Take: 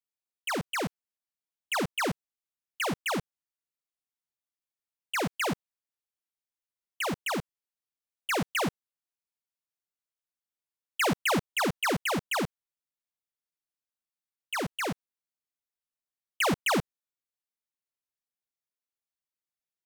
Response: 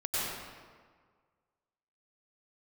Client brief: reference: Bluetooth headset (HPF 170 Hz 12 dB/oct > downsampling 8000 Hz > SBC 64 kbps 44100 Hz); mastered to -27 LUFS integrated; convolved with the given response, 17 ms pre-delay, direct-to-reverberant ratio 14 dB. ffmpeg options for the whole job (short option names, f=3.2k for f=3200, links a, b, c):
-filter_complex "[0:a]asplit=2[a][b];[1:a]atrim=start_sample=2205,adelay=17[c];[b][c]afir=irnorm=-1:irlink=0,volume=-22dB[d];[a][d]amix=inputs=2:normalize=0,highpass=170,aresample=8000,aresample=44100,volume=4.5dB" -ar 44100 -c:a sbc -b:a 64k